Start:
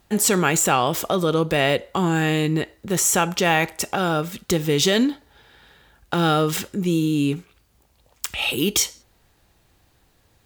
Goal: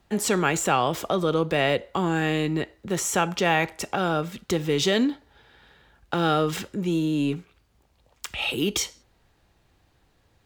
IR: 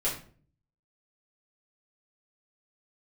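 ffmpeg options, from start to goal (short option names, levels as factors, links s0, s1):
-filter_complex "[0:a]highshelf=f=7300:g=-11.5,acrossover=split=190|960[s0][s1][s2];[s0]asoftclip=type=hard:threshold=0.0266[s3];[s3][s1][s2]amix=inputs=3:normalize=0,volume=0.75"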